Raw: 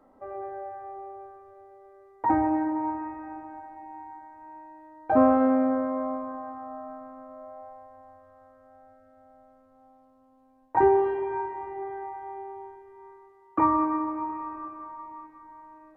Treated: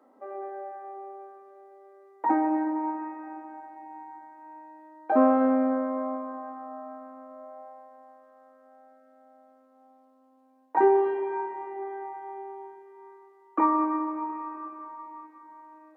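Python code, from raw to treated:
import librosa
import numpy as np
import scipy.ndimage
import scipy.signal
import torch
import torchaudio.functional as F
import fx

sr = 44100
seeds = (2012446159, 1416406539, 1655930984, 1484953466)

y = scipy.signal.sosfilt(scipy.signal.cheby1(5, 1.0, 220.0, 'highpass', fs=sr, output='sos'), x)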